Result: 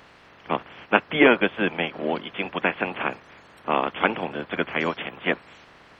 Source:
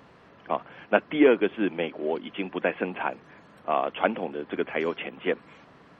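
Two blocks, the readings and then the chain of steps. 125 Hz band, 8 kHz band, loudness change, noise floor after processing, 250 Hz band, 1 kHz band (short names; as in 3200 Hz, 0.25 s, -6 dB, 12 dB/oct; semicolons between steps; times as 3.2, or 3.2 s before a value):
+5.5 dB, n/a, +3.0 dB, -52 dBFS, +1.5 dB, +4.0 dB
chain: spectral limiter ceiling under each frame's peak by 15 dB; gain +2.5 dB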